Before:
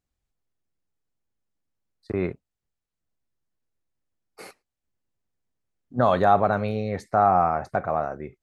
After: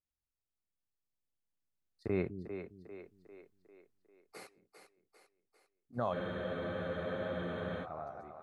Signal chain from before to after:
source passing by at 0:03.19, 7 m/s, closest 3.2 metres
echo with a time of its own for lows and highs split 310 Hz, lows 204 ms, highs 398 ms, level −8.5 dB
frozen spectrum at 0:06.15, 1.69 s
level +1 dB

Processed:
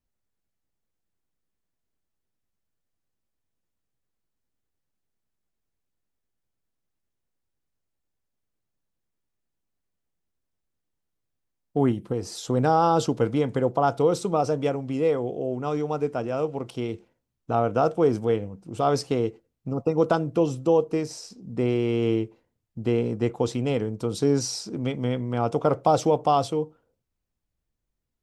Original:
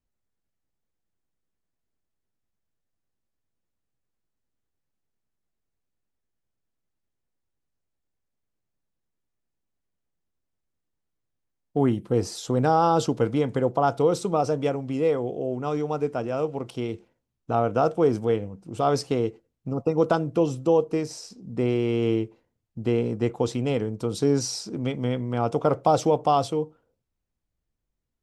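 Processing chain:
0:11.91–0:12.45: downward compressor 4 to 1, threshold −24 dBFS, peak gain reduction 7 dB

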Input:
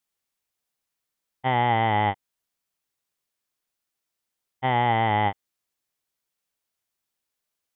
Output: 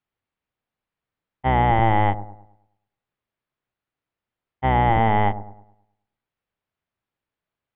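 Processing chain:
sub-octave generator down 1 octave, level 0 dB
high-frequency loss of the air 420 metres
on a send: delay with a low-pass on its return 106 ms, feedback 39%, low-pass 780 Hz, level −12 dB
on the sum: level +4.5 dB

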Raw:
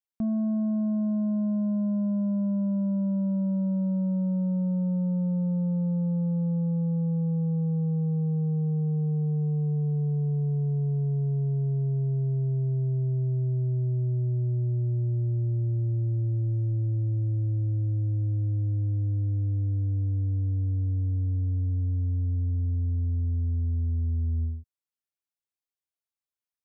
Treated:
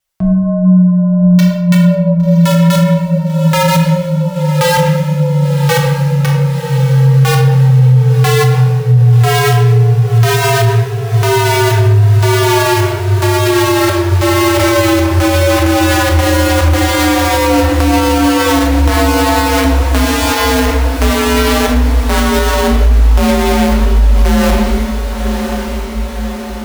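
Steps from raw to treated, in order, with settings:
flanger 0.96 Hz, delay 6.5 ms, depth 4.6 ms, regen +42%
pitch vibrato 0.84 Hz 16 cents
parametric band 270 Hz −15 dB 0.77 octaves
wrap-around overflow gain 29 dB
feedback delay with all-pass diffusion 1,098 ms, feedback 60%, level −11.5 dB
convolution reverb RT60 0.85 s, pre-delay 5 ms, DRR 0.5 dB
frequency shifter −32 Hz
boost into a limiter +23.5 dB
level −1 dB

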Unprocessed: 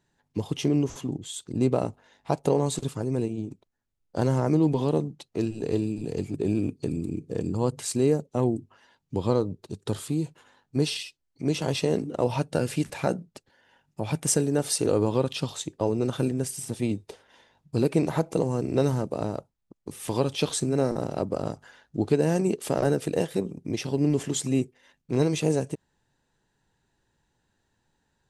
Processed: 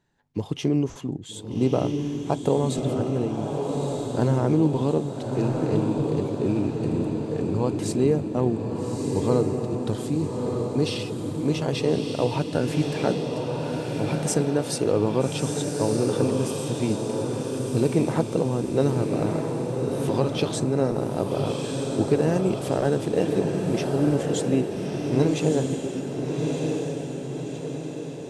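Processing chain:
high-shelf EQ 5,700 Hz −8 dB
feedback delay with all-pass diffusion 1,255 ms, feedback 54%, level −3 dB
level +1 dB

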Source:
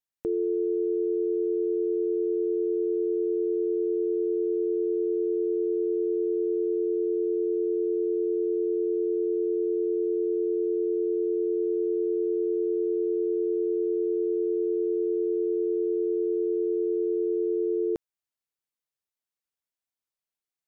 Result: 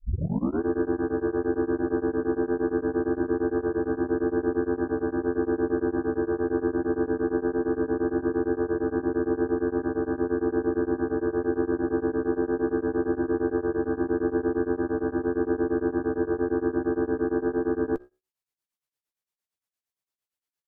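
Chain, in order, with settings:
turntable start at the beginning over 0.62 s
harmonic generator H 4 −15 dB, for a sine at −20 dBFS
pitch-shifted copies added −5 semitones −3 dB
flanger 0.2 Hz, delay 9.8 ms, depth 6.9 ms, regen −69%
tremolo along a rectified sine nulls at 8.7 Hz
level +5.5 dB

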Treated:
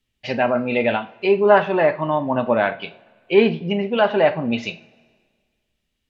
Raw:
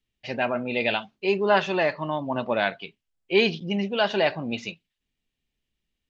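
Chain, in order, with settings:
treble cut that deepens with the level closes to 1,700 Hz, closed at −21.5 dBFS
coupled-rooms reverb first 0.31 s, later 1.7 s, from −21 dB, DRR 7.5 dB
level +6 dB

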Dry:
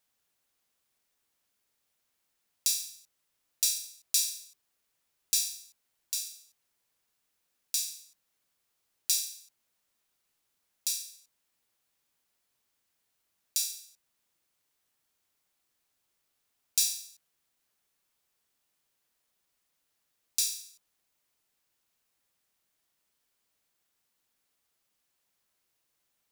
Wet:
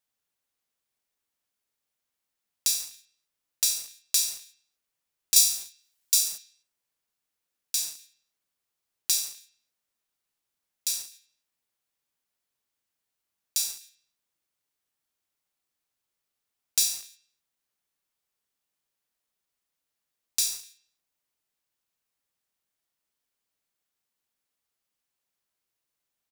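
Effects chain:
noise gate −52 dBFS, range −6 dB
0:05.36–0:06.38: high-shelf EQ 2,400 Hz +10 dB
hum removal 337.9 Hz, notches 24
far-end echo of a speakerphone 250 ms, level −19 dB
in parallel at −8 dB: bit-depth reduction 6 bits, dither none

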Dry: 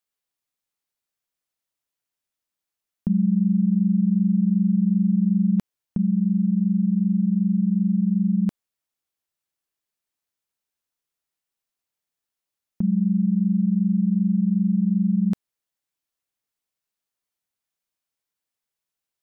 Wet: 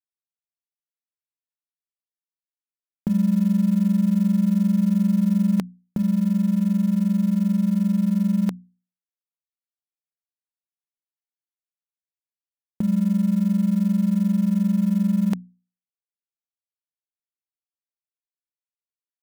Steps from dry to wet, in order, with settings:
mu-law and A-law mismatch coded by A
low-shelf EQ 220 Hz −11 dB
mains-hum notches 60/120/180/240 Hz
level +7.5 dB

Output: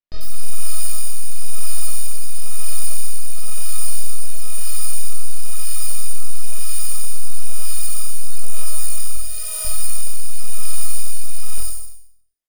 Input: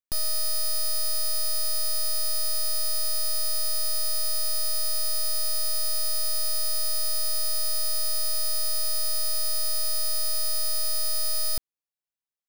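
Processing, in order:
0:09.15–0:09.65: high-pass filter 400 Hz 24 dB per octave
on a send: flutter between parallel walls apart 4.2 metres, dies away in 0.75 s
on the sum: multi-voice chorus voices 6, 0.97 Hz, delay 20 ms, depth 3 ms
rotating-speaker cabinet horn 1 Hz
multiband delay without the direct sound lows, highs 90 ms, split 4,700 Hz
in parallel at −0.5 dB: downward compressor, threshold −20 dBFS, peak gain reduction 11.5 dB
on the sum: level +1 dB

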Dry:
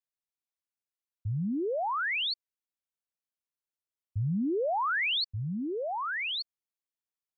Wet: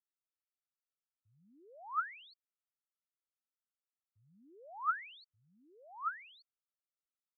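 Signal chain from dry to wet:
resonant band-pass 1,300 Hz, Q 14
level +2.5 dB

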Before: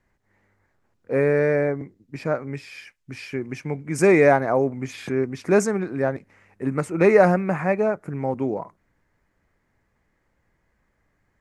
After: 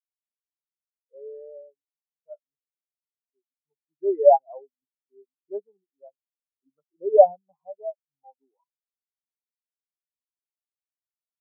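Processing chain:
parametric band 950 Hz +15 dB 1.5 octaves
every bin expanded away from the loudest bin 4 to 1
level −7 dB

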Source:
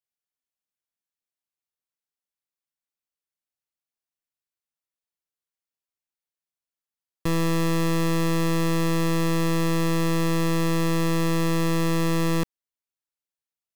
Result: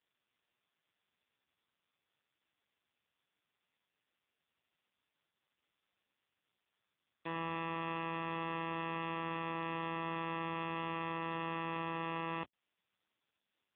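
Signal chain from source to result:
high-pass filter 1,100 Hz 12 dB per octave
tube saturation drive 41 dB, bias 0.65
level +9 dB
AMR narrowband 4.75 kbit/s 8,000 Hz

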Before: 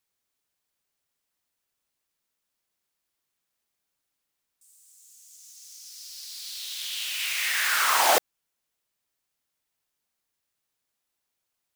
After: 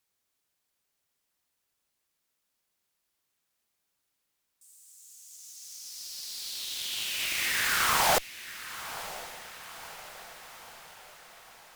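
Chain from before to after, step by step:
in parallel at 0 dB: downward compressor, threshold −38 dBFS, peak gain reduction 19.5 dB
on the sum: tube saturation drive 16 dB, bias 0.75
feedback delay with all-pass diffusion 1,015 ms, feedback 56%, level −14 dB

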